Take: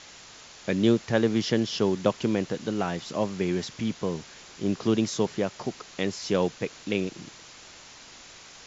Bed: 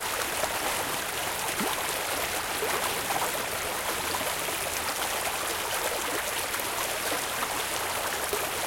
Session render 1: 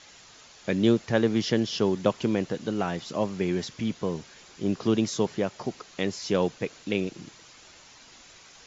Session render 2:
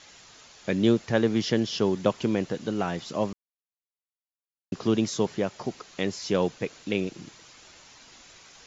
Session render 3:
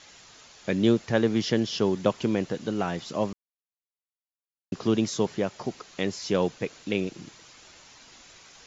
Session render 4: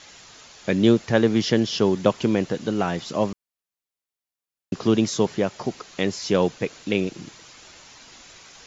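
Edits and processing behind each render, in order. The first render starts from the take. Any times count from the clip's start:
noise reduction 6 dB, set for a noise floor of -48 dBFS
3.33–4.72 s: mute
no audible change
trim +4.5 dB

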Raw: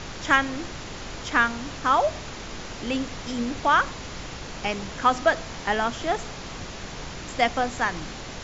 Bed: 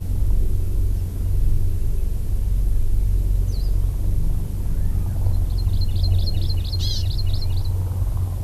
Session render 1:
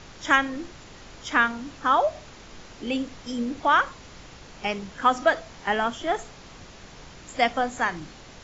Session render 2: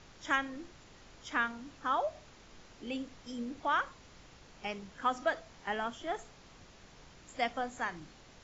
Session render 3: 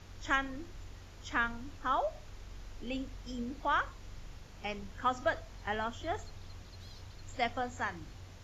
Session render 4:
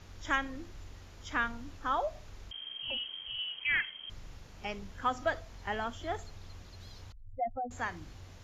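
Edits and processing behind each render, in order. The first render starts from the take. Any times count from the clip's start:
noise print and reduce 9 dB
trim -11 dB
add bed -28.5 dB
2.51–4.10 s: frequency inversion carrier 3.2 kHz; 7.12–7.71 s: spectral contrast enhancement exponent 3.8

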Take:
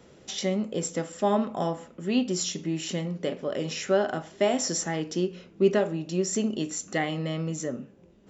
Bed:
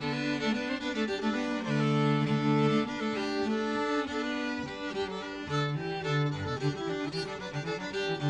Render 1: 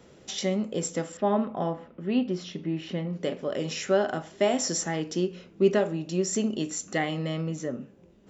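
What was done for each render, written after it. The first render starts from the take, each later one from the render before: 1.17–3.13 s: distance through air 280 m; 7.41–7.81 s: distance through air 94 m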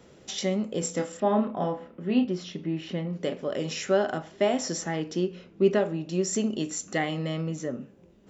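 0.79–2.25 s: doubling 28 ms -7 dB; 4.18–6.13 s: distance through air 67 m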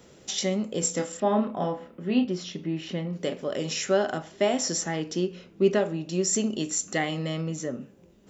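treble shelf 4.9 kHz +8.5 dB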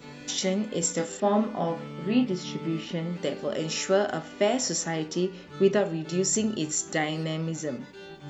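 add bed -12.5 dB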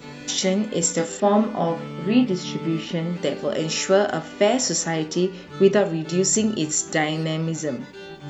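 trim +5.5 dB

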